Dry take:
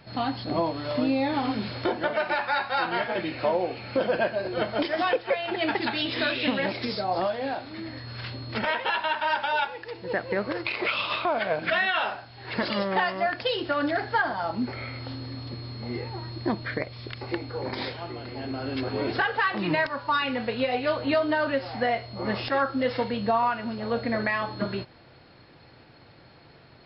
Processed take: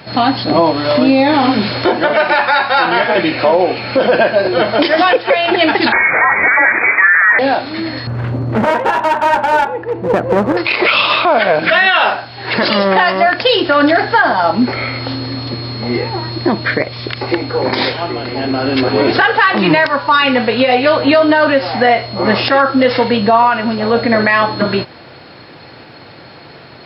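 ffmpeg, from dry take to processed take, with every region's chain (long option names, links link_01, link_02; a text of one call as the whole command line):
ffmpeg -i in.wav -filter_complex "[0:a]asettb=1/sr,asplit=3[link_01][link_02][link_03];[link_01]atrim=end=5.924[link_04];[link_02]atrim=start=5.92:end=7.39,asetpts=PTS-STARTPTS,afade=type=in:duration=0.004:curve=qsin,afade=type=out:start_time=1.466:duration=0.004:curve=qsin,equalizer=frequency=970:width_type=o:width=1.3:gain=13,acrusher=bits=6:dc=4:mix=0:aa=0.000001,lowpass=frequency=2100:width_type=q:width=0.5098,lowpass=frequency=2100:width_type=q:width=0.6013,lowpass=frequency=2100:width_type=q:width=0.9,lowpass=frequency=2100:width_type=q:width=2.563,afreqshift=-2500[link_05];[link_03]atrim=start=7.386[link_06];[link_04][link_05]acrossfade=duration=0.004:curve1=hsin:curve2=qsin[link_07];[link_07][link_06]acrossfade=duration=0.004:curve1=qsin:curve2=hsin,asettb=1/sr,asplit=3[link_08][link_09][link_10];[link_08]atrim=end=8.074[link_11];[link_09]atrim=start=8.07:end=10.57,asetpts=PTS-STARTPTS,afade=type=in:duration=0.004:curve=qsin,afade=type=out:start_time=2.496:duration=0.004:curve=qsin,lowpass=1100,lowshelf=frequency=290:gain=9,aeval=exprs='clip(val(0),-1,0.0355)':channel_layout=same[link_12];[link_10]atrim=start=10.566[link_13];[link_11][link_12]acrossfade=duration=0.004:curve1=hsin:curve2=qsin[link_14];[link_14][link_13]acrossfade=duration=0.004:curve1=qsin:curve2=hsin,highpass=frequency=180:poles=1,alimiter=level_in=18.5dB:limit=-1dB:release=50:level=0:latency=1,volume=-1dB" out.wav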